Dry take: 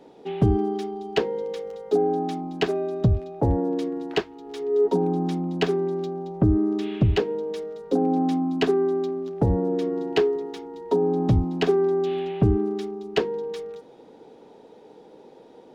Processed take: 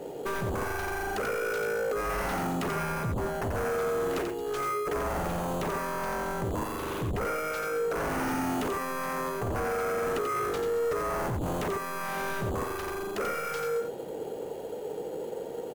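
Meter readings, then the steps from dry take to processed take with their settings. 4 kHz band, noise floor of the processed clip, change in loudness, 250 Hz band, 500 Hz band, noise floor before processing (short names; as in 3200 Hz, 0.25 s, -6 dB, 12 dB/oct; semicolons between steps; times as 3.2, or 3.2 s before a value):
-7.0 dB, -38 dBFS, -6.5 dB, -11.0 dB, -6.5 dB, -50 dBFS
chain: HPF 42 Hz 12 dB/oct; treble ducked by the level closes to 1200 Hz, closed at -16.5 dBFS; in parallel at -4 dB: sample-rate reducer 3700 Hz, jitter 0%; on the sum: ten-band EQ 250 Hz -10 dB, 500 Hz +3 dB, 1000 Hz -8 dB, 4000 Hz -10 dB; negative-ratio compressor -25 dBFS, ratio -1; limiter -22 dBFS, peak gain reduction 8.5 dB; de-hum 69.65 Hz, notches 5; sine folder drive 11 dB, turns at -20 dBFS; on a send: echo 88 ms -5.5 dB; on the sum: gain -8 dB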